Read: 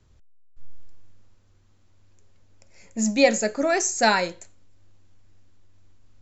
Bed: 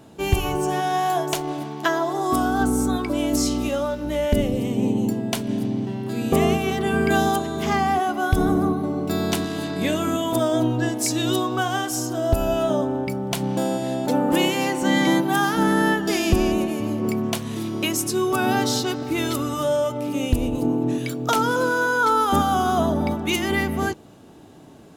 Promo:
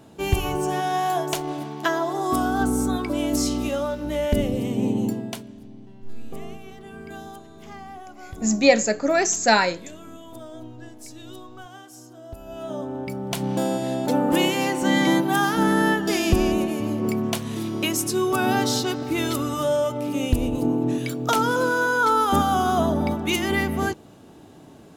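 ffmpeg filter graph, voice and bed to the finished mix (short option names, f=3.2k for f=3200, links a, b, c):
-filter_complex "[0:a]adelay=5450,volume=2dB[a];[1:a]volume=17dB,afade=t=out:st=5.06:d=0.46:silence=0.133352,afade=t=in:st=12.44:d=1.12:silence=0.11885[b];[a][b]amix=inputs=2:normalize=0"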